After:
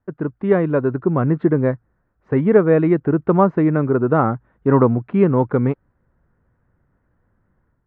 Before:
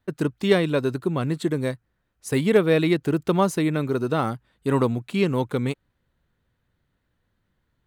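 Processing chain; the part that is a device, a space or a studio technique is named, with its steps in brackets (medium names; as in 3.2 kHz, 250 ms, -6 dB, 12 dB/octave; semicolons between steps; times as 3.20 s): action camera in a waterproof case (low-pass 1.6 kHz 24 dB/octave; level rider gain up to 8.5 dB; AAC 96 kbps 32 kHz)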